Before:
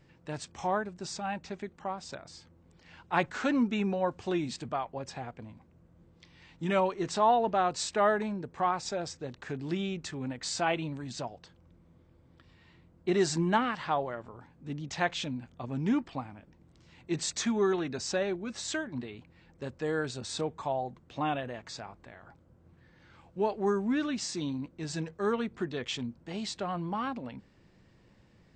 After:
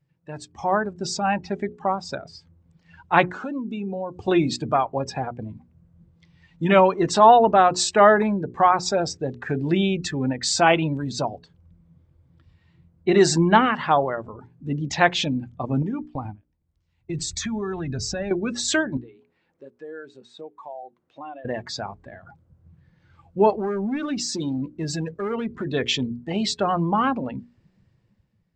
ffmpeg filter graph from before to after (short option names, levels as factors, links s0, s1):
-filter_complex "[0:a]asettb=1/sr,asplit=3[s0][s1][s2];[s0]atrim=end=3.324[s3];[s1]atrim=start=3.32:end=4.28,asetpts=PTS-STARTPTS,afade=t=in:d=0.004:c=qsin,afade=t=out:st=0.956:d=0.004:c=qsin,acompressor=threshold=0.0126:ratio=5:attack=3.2:release=140:knee=1:detection=peak,equalizer=f=1900:t=o:w=0.65:g=-9[s4];[s2]atrim=start=4.276[s5];[s3][s4]acrossfade=d=0.004:c1=hsin:c2=qsin[s6];[s6][s5]acrossfade=d=0.004:c1=qsin:c2=hsin,asettb=1/sr,asplit=3[s7][s8][s9];[s7]atrim=end=15.824[s10];[s8]atrim=start=15.82:end=18.31,asetpts=PTS-STARTPTS,afade=t=in:d=0.004:c=qsin,afade=t=out:st=2.486:d=0.004:c=qsin,agate=range=0.2:threshold=0.00447:ratio=16:release=100:detection=peak,asubboost=boost=11:cutoff=120,acompressor=threshold=0.0158:ratio=10:attack=3.2:release=140:knee=1:detection=peak[s11];[s9]atrim=start=18.306[s12];[s10][s11]acrossfade=d=0.004:c1=hsin:c2=qsin[s13];[s13][s12]acrossfade=d=0.004:c1=qsin:c2=hsin,asettb=1/sr,asplit=3[s14][s15][s16];[s14]atrim=end=18.974[s17];[s15]atrim=start=18.97:end=21.45,asetpts=PTS-STARTPTS,afade=t=in:d=0.004:c=qsin,afade=t=out:st=2.476:d=0.004:c=qsin,highpass=f=180:p=1,bass=f=250:g=-6,treble=f=4000:g=-6,acompressor=threshold=0.00112:ratio=2:attack=3.2:release=140:knee=1:detection=peak[s18];[s16]atrim=start=21.446[s19];[s17][s18]acrossfade=d=0.004:c1=hsin:c2=qsin[s20];[s20][s19]acrossfade=d=0.004:c1=qsin:c2=hsin,asettb=1/sr,asplit=3[s21][s22][s23];[s21]atrim=end=23.504[s24];[s22]atrim=start=23.5:end=25.67,asetpts=PTS-STARTPTS,afade=t=in:d=0.004:c=qsin,afade=t=out:st=2.166:d=0.004:c=qsin,acompressor=threshold=0.0178:ratio=3:attack=3.2:release=140:knee=1:detection=peak,volume=53.1,asoftclip=hard,volume=0.0188[s25];[s23]atrim=start=25.666[s26];[s24][s25]acrossfade=d=0.004:c1=hsin:c2=qsin[s27];[s27][s26]acrossfade=d=0.004:c1=qsin:c2=hsin,afftdn=nr=18:nf=-45,bandreject=f=60:t=h:w=6,bandreject=f=120:t=h:w=6,bandreject=f=180:t=h:w=6,bandreject=f=240:t=h:w=6,bandreject=f=300:t=h:w=6,bandreject=f=360:t=h:w=6,bandreject=f=420:t=h:w=6,dynaudnorm=f=140:g=11:m=3.55,volume=1.19"